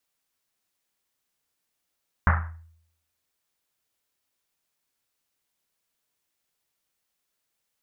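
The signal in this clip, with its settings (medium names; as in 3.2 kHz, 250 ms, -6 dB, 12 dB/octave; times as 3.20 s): Risset drum, pitch 82 Hz, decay 0.71 s, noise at 1.3 kHz, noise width 1.1 kHz, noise 40%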